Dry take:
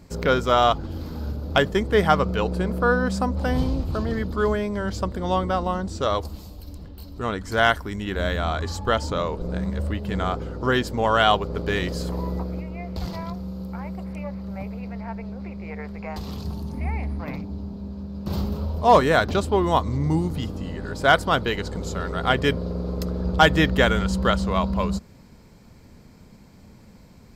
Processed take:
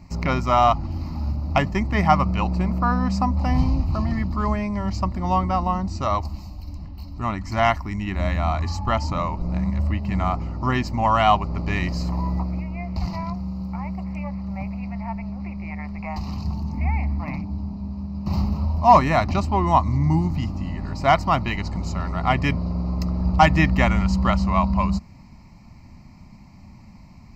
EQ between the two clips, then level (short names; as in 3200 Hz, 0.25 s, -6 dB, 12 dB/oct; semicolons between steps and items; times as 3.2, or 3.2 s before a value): high shelf 6600 Hz -11.5 dB; fixed phaser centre 2300 Hz, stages 8; +5.0 dB